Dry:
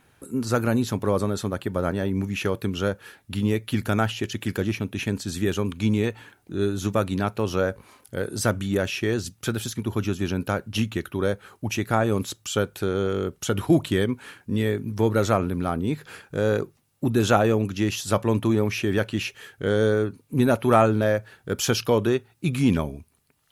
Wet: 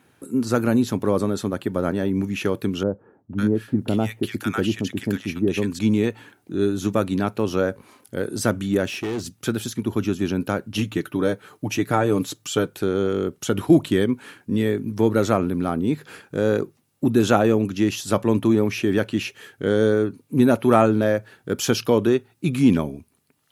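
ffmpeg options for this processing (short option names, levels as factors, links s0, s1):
-filter_complex "[0:a]asettb=1/sr,asplit=3[s0][s1][s2];[s0]atrim=end=2.834[s3];[s1]atrim=start=2.83:end=5.79,asetpts=PTS-STARTPTS,afade=t=in:d=0.004:c=qsin,afade=t=out:st=2.956:d=0.004:c=qsin,acrossover=split=1000[s4][s5];[s5]adelay=550[s6];[s4][s6]amix=inputs=2:normalize=0,atrim=end_sample=130536[s7];[s2]atrim=start=5.786[s8];[s3][s7]acrossfade=d=0.004:c1=hsin:c2=qsin[s9];[s9][s8]acrossfade=d=0.004:c1=qsin:c2=hsin,asettb=1/sr,asplit=3[s10][s11][s12];[s10]atrim=end=8.894[s13];[s11]atrim=start=8.89:end=9.39,asetpts=PTS-STARTPTS,afade=t=in:d=0.004:c=qsin,afade=t=out:st=0.496:d=0.004:c=qsin,asoftclip=type=hard:threshold=0.0473[s14];[s12]atrim=start=9.386[s15];[s13][s14]acrossfade=d=0.004:c1=hsin:c2=qsin[s16];[s16][s15]acrossfade=d=0.004:c1=qsin:c2=hsin,asettb=1/sr,asplit=3[s17][s18][s19];[s17]atrim=end=10.784[s20];[s18]atrim=start=10.78:end=12.68,asetpts=PTS-STARTPTS,afade=t=in:d=0.004:c=qsin,afade=t=out:st=1.896:d=0.004:c=qsin,aecho=1:1:6.7:0.5,atrim=end_sample=83790[s21];[s19]atrim=start=12.676[s22];[s20][s21]acrossfade=d=0.004:c1=hsin:c2=qsin[s23];[s23][s22]acrossfade=d=0.004:c1=qsin:c2=hsin,highpass=96,equalizer=f=280:t=o:w=1.2:g=5.5"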